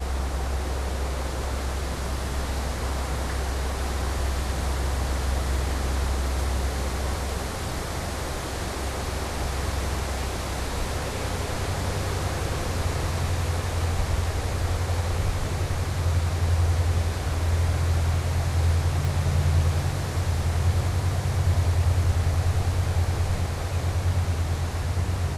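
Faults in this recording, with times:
19.05 s: pop

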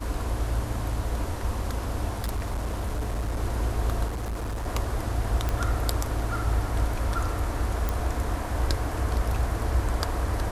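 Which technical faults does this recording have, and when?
2.09–3.40 s: clipped -24.5 dBFS
4.07–4.68 s: clipped -27.5 dBFS
5.49 s: pop -13 dBFS
7.89 s: pop

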